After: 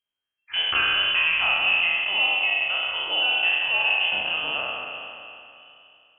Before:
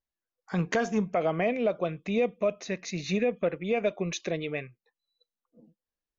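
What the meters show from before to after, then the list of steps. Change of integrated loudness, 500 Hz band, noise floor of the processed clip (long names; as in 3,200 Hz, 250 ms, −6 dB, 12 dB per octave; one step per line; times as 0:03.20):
+9.0 dB, −11.0 dB, below −85 dBFS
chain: peak hold with a decay on every bin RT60 2.70 s
flutter between parallel walls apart 5.7 metres, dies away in 0.23 s
voice inversion scrambler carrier 3,200 Hz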